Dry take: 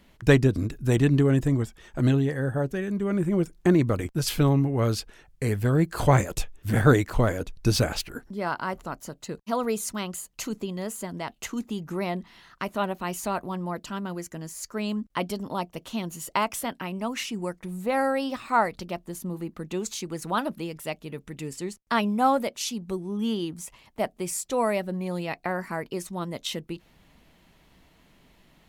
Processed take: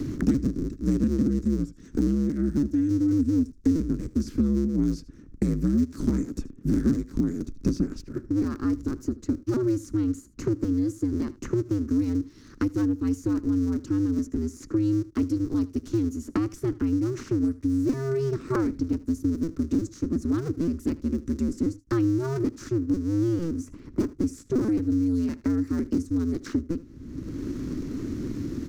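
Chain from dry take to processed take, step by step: cycle switcher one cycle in 2, inverted; FFT filter 190 Hz 0 dB, 280 Hz +10 dB, 760 Hz -27 dB, 1.3 kHz -14 dB, 3.1 kHz -24 dB, 5.9 kHz -7 dB, 10 kHz -19 dB; delay 77 ms -20.5 dB; three bands compressed up and down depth 100%

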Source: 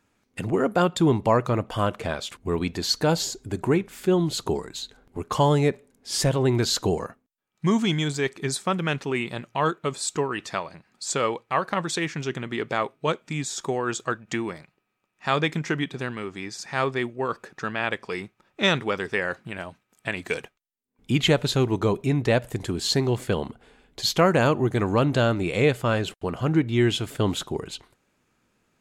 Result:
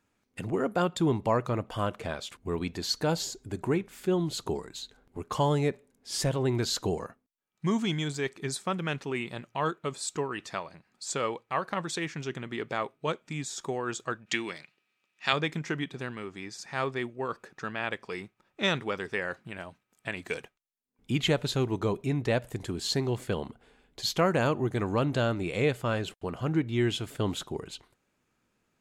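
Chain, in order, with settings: 14.26–15.33 s: frequency weighting D; trim -6 dB

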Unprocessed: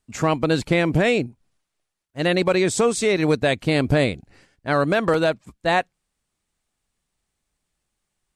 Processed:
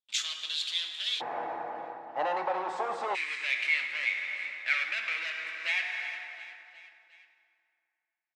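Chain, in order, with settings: waveshaping leveller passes 5; feedback delay 359 ms, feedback 55%, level -20 dB; reverberation RT60 2.6 s, pre-delay 4 ms, DRR 3 dB; compression, threshold -13 dBFS, peak gain reduction 9.5 dB; ladder band-pass 3.7 kHz, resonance 75%, from 1.20 s 880 Hz, from 3.14 s 2.4 kHz

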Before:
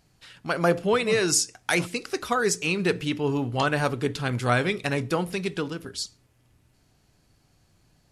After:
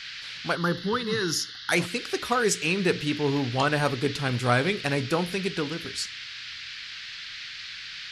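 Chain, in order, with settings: band noise 1.5–4.8 kHz -39 dBFS; 0.55–1.72 s: static phaser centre 2.4 kHz, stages 6

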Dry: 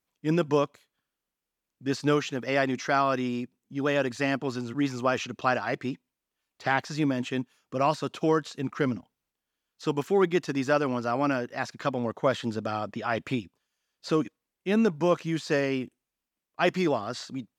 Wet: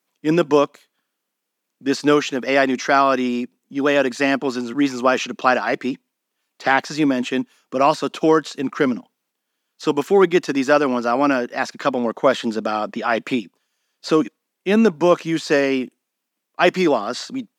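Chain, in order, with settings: high-pass 190 Hz 24 dB/octave; trim +9 dB

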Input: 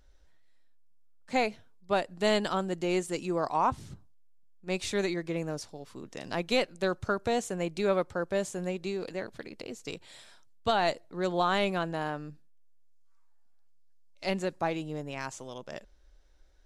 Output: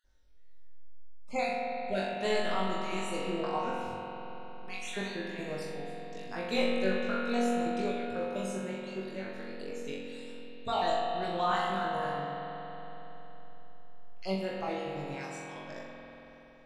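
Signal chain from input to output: random holes in the spectrogram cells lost 36%; flutter echo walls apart 3.6 m, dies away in 0.55 s; spring tank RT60 3.9 s, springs 46 ms, chirp 25 ms, DRR -1 dB; trim -7 dB

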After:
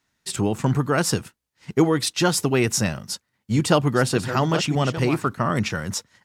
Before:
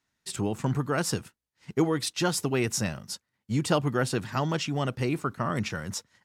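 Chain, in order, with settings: 2.96–5.29 s: chunks repeated in reverse 598 ms, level -9.5 dB; trim +6.5 dB

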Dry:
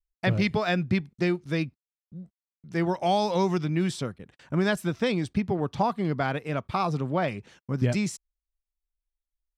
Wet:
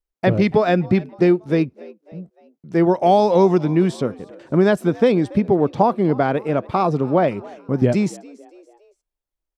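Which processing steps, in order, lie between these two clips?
peaking EQ 420 Hz +13.5 dB 2.9 oct; frequency-shifting echo 283 ms, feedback 45%, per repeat +76 Hz, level -22 dB; trim -1 dB

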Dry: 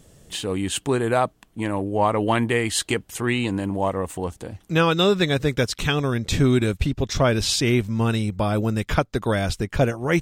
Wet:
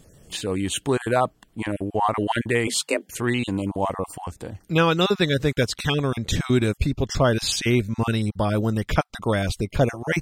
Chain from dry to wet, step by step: random holes in the spectrogram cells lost 20%; 2.67–3.09 s: frequency shift +150 Hz

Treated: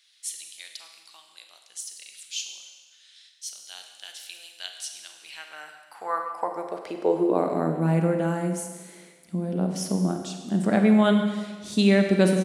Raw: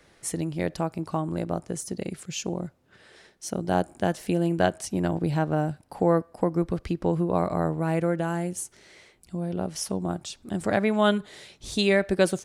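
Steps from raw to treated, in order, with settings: speakerphone echo 140 ms, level -20 dB; high-pass sweep 3.5 kHz -> 190 Hz, 5.08–7.83 s; Schroeder reverb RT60 1.4 s, combs from 33 ms, DRR 4.5 dB; trim -2 dB

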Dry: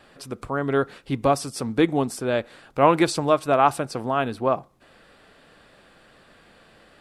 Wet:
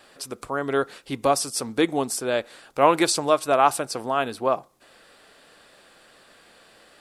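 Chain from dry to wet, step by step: tone controls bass -9 dB, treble +8 dB

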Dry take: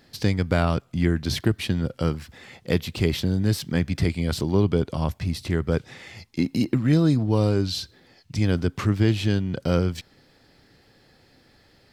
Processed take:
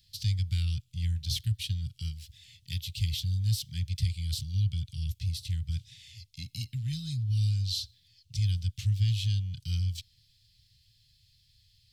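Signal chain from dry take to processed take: elliptic band-stop 110–3200 Hz, stop band 70 dB; 1.93–2.82 s: dynamic bell 130 Hz, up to -3 dB, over -38 dBFS, Q 0.81; trim -2.5 dB

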